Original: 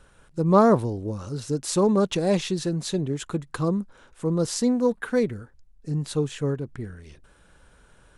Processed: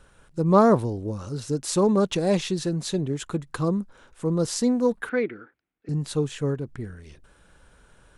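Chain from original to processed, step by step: 5.09–5.89 s: cabinet simulation 320–3300 Hz, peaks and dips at 320 Hz +8 dB, 570 Hz -5 dB, 950 Hz -5 dB, 1.4 kHz +6 dB, 2.2 kHz +7 dB

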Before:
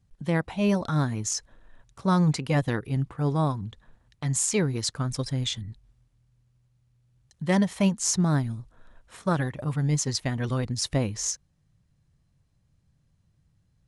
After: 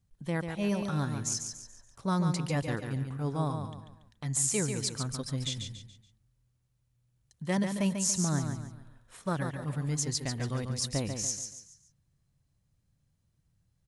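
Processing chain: treble shelf 8.1 kHz +9.5 dB; on a send: feedback delay 142 ms, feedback 37%, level -6.5 dB; on the sum: trim -7 dB

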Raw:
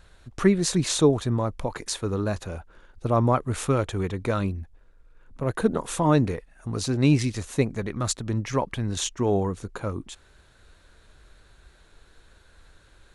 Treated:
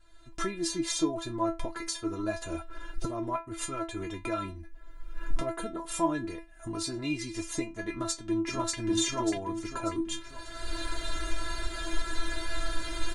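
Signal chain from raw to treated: recorder AGC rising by 27 dB/s; 3.06–3.88 s: transient shaper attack -7 dB, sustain -11 dB; inharmonic resonator 330 Hz, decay 0.24 s, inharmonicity 0.002; 7.89–8.78 s: echo throw 590 ms, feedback 40%, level 0 dB; trim +6 dB

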